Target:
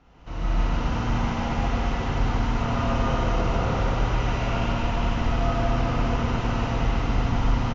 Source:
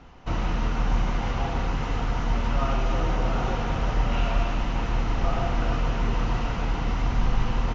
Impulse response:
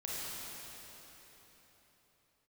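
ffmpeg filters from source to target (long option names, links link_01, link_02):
-filter_complex "[0:a]aecho=1:1:145.8|239.1:1|0.631[link_01];[1:a]atrim=start_sample=2205[link_02];[link_01][link_02]afir=irnorm=-1:irlink=0,volume=-4.5dB"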